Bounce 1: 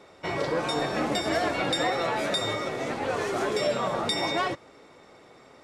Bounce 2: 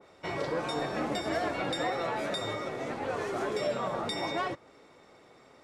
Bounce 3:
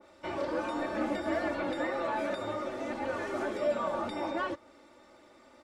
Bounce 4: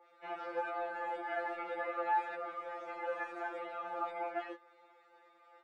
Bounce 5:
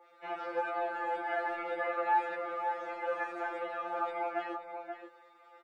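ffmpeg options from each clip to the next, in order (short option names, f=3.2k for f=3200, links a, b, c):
-af "adynamicequalizer=threshold=0.00891:dfrequency=2200:dqfactor=0.7:tfrequency=2200:tqfactor=0.7:attack=5:release=100:ratio=0.375:range=2:mode=cutabove:tftype=highshelf,volume=-4.5dB"
-filter_complex "[0:a]acrossover=split=2900[a][b];[b]acompressor=threshold=-52dB:ratio=4:attack=1:release=60[c];[a][c]amix=inputs=2:normalize=0,aecho=1:1:3.4:0.82,volume=-2.5dB"
-filter_complex "[0:a]acrossover=split=510 2700:gain=0.0794 1 0.158[a][b][c];[a][b][c]amix=inputs=3:normalize=0,afftfilt=real='re*2.83*eq(mod(b,8),0)':imag='im*2.83*eq(mod(b,8),0)':win_size=2048:overlap=0.75"
-filter_complex "[0:a]asplit=2[a][b];[b]adelay=530.6,volume=-7dB,highshelf=f=4k:g=-11.9[c];[a][c]amix=inputs=2:normalize=0,volume=3.5dB"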